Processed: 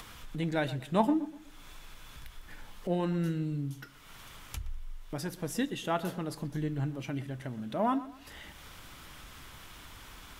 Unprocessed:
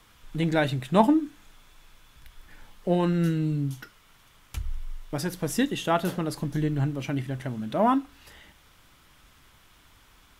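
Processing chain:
upward compression, threshold −28 dBFS
on a send: tape delay 122 ms, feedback 37%, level −15 dB, low-pass 2,400 Hz
on the sum: level −7 dB

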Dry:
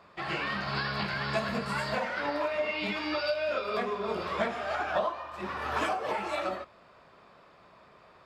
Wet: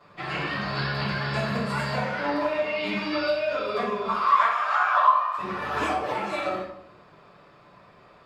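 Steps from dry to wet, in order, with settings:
0:04.08–0:05.38: high-pass with resonance 1,100 Hz, resonance Q 6.4
convolution reverb RT60 0.75 s, pre-delay 7 ms, DRR −8 dB
level −5.5 dB

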